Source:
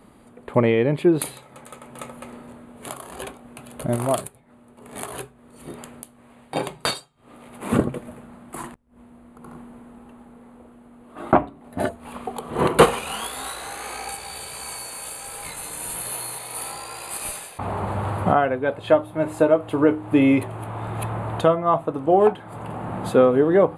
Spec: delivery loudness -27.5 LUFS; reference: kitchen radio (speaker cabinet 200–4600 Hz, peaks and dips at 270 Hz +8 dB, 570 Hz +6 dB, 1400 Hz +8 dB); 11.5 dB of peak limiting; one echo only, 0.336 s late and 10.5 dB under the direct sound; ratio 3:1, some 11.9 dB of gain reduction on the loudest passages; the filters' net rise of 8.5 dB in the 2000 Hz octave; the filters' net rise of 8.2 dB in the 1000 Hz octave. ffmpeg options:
-af "equalizer=f=1k:t=o:g=7,equalizer=f=2k:t=o:g=3,acompressor=threshold=-23dB:ratio=3,alimiter=limit=-17.5dB:level=0:latency=1,highpass=200,equalizer=f=270:t=q:w=4:g=8,equalizer=f=570:t=q:w=4:g=6,equalizer=f=1.4k:t=q:w=4:g=8,lowpass=f=4.6k:w=0.5412,lowpass=f=4.6k:w=1.3066,aecho=1:1:336:0.299,volume=0.5dB"

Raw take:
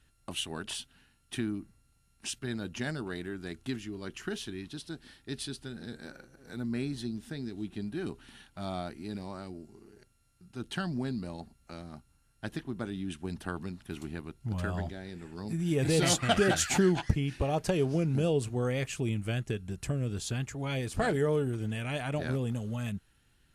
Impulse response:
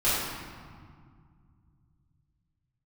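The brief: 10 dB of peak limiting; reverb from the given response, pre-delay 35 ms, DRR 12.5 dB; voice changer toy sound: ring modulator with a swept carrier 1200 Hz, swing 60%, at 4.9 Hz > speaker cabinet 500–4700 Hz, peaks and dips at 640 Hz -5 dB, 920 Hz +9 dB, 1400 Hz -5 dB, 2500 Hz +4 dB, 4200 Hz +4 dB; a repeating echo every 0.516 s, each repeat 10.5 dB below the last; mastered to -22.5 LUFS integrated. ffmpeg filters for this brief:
-filter_complex "[0:a]alimiter=limit=-21.5dB:level=0:latency=1,aecho=1:1:516|1032|1548:0.299|0.0896|0.0269,asplit=2[a][b];[1:a]atrim=start_sample=2205,adelay=35[c];[b][c]afir=irnorm=-1:irlink=0,volume=-26.5dB[d];[a][d]amix=inputs=2:normalize=0,aeval=exprs='val(0)*sin(2*PI*1200*n/s+1200*0.6/4.9*sin(2*PI*4.9*n/s))':c=same,highpass=500,equalizer=f=640:t=q:w=4:g=-5,equalizer=f=920:t=q:w=4:g=9,equalizer=f=1.4k:t=q:w=4:g=-5,equalizer=f=2.5k:t=q:w=4:g=4,equalizer=f=4.2k:t=q:w=4:g=4,lowpass=f=4.7k:w=0.5412,lowpass=f=4.7k:w=1.3066,volume=13dB"

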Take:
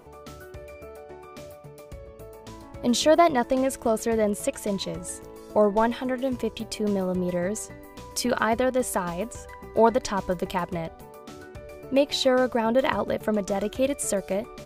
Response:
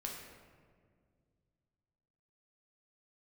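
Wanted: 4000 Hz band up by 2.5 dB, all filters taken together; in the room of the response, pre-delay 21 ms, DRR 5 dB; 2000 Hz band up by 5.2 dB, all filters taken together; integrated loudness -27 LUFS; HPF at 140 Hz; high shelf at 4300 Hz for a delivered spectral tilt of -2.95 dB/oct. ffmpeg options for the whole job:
-filter_complex "[0:a]highpass=140,equalizer=f=2k:t=o:g=7,equalizer=f=4k:t=o:g=4.5,highshelf=f=4.3k:g=-7,asplit=2[a][b];[1:a]atrim=start_sample=2205,adelay=21[c];[b][c]afir=irnorm=-1:irlink=0,volume=-4.5dB[d];[a][d]amix=inputs=2:normalize=0,volume=-3.5dB"

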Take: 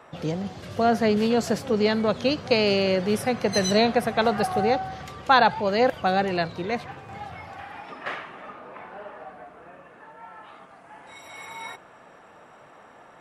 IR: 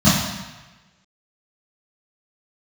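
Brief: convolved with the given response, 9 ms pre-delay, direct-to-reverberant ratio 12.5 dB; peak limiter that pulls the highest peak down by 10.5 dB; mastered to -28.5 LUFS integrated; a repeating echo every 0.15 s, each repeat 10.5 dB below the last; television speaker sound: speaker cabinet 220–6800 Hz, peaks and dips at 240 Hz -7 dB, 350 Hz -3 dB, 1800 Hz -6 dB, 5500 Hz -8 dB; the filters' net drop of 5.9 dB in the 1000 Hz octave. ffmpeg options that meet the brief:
-filter_complex "[0:a]equalizer=f=1k:t=o:g=-8.5,alimiter=limit=-17.5dB:level=0:latency=1,aecho=1:1:150|300|450:0.299|0.0896|0.0269,asplit=2[a][b];[1:a]atrim=start_sample=2205,adelay=9[c];[b][c]afir=irnorm=-1:irlink=0,volume=-35dB[d];[a][d]amix=inputs=2:normalize=0,highpass=f=220:w=0.5412,highpass=f=220:w=1.3066,equalizer=f=240:t=q:w=4:g=-7,equalizer=f=350:t=q:w=4:g=-3,equalizer=f=1.8k:t=q:w=4:g=-6,equalizer=f=5.5k:t=q:w=4:g=-8,lowpass=f=6.8k:w=0.5412,lowpass=f=6.8k:w=1.3066,volume=1dB"

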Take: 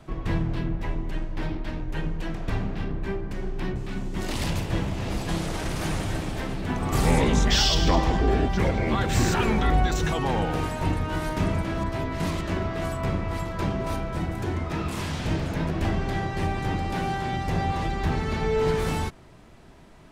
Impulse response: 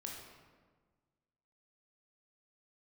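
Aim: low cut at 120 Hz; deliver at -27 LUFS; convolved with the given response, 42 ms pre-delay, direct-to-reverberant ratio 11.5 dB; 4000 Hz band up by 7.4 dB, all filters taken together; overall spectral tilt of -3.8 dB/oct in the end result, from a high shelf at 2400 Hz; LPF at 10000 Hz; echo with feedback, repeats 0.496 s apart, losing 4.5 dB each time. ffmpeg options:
-filter_complex "[0:a]highpass=120,lowpass=10k,highshelf=f=2.4k:g=5,equalizer=f=4k:t=o:g=5,aecho=1:1:496|992|1488|1984|2480|2976|3472|3968|4464:0.596|0.357|0.214|0.129|0.0772|0.0463|0.0278|0.0167|0.01,asplit=2[a][b];[1:a]atrim=start_sample=2205,adelay=42[c];[b][c]afir=irnorm=-1:irlink=0,volume=-9.5dB[d];[a][d]amix=inputs=2:normalize=0,volume=-3dB"

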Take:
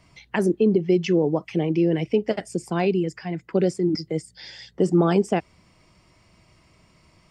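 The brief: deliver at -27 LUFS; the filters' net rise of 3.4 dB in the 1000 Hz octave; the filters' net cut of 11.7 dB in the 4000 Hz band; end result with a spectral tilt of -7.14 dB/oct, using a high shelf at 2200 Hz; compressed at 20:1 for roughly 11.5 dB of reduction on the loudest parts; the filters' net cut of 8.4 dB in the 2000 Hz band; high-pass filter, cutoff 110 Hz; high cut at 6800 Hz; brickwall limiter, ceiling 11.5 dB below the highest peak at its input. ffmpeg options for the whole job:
-af "highpass=110,lowpass=6.8k,equalizer=f=1k:t=o:g=8,equalizer=f=2k:t=o:g=-8,highshelf=f=2.2k:g=-6.5,equalizer=f=4k:t=o:g=-7,acompressor=threshold=-25dB:ratio=20,volume=8dB,alimiter=limit=-16.5dB:level=0:latency=1"

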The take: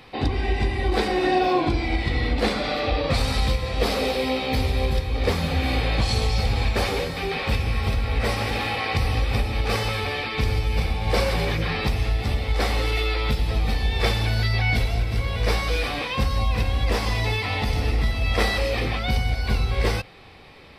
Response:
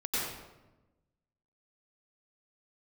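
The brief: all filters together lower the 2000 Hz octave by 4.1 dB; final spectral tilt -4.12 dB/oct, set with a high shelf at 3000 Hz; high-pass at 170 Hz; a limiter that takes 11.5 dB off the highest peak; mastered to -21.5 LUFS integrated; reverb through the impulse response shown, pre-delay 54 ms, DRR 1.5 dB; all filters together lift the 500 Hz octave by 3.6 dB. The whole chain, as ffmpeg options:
-filter_complex "[0:a]highpass=170,equalizer=f=500:t=o:g=4.5,equalizer=f=2k:t=o:g=-8,highshelf=f=3k:g=6.5,alimiter=limit=-18.5dB:level=0:latency=1,asplit=2[a][b];[1:a]atrim=start_sample=2205,adelay=54[c];[b][c]afir=irnorm=-1:irlink=0,volume=-8.5dB[d];[a][d]amix=inputs=2:normalize=0,volume=4dB"

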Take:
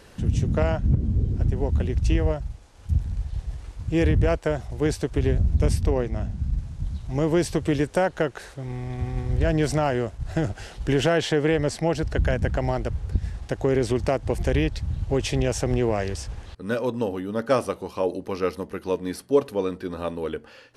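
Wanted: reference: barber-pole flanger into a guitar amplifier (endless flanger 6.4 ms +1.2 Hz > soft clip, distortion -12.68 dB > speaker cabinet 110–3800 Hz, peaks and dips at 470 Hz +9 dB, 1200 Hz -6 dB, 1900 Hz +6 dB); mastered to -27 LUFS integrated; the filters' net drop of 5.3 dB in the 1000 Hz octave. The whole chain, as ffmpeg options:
-filter_complex "[0:a]equalizer=f=1k:t=o:g=-7.5,asplit=2[a][b];[b]adelay=6.4,afreqshift=1.2[c];[a][c]amix=inputs=2:normalize=1,asoftclip=threshold=-22dB,highpass=110,equalizer=f=470:t=q:w=4:g=9,equalizer=f=1.2k:t=q:w=4:g=-6,equalizer=f=1.9k:t=q:w=4:g=6,lowpass=f=3.8k:w=0.5412,lowpass=f=3.8k:w=1.3066,volume=3dB"

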